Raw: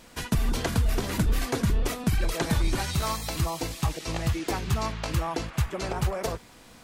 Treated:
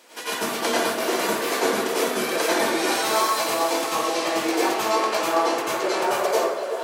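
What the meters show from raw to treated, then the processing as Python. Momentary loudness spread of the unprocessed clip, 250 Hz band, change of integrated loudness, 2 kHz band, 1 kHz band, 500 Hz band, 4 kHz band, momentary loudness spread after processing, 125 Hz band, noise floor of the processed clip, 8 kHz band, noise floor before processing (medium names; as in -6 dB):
4 LU, +3.0 dB, +6.0 dB, +9.5 dB, +11.0 dB, +11.5 dB, +8.5 dB, 3 LU, -20.0 dB, -30 dBFS, +8.0 dB, -51 dBFS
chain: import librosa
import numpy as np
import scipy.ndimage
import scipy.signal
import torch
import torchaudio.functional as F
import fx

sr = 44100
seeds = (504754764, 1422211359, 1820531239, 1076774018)

y = scipy.signal.sosfilt(scipy.signal.butter(4, 330.0, 'highpass', fs=sr, output='sos'), x)
y = fx.echo_stepped(y, sr, ms=372, hz=490.0, octaves=1.4, feedback_pct=70, wet_db=-5)
y = fx.rev_plate(y, sr, seeds[0], rt60_s=0.87, hf_ratio=0.55, predelay_ms=80, drr_db=-9.5)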